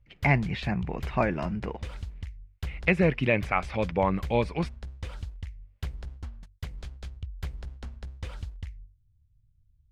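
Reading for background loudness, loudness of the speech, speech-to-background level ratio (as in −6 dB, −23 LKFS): −41.0 LKFS, −27.5 LKFS, 13.5 dB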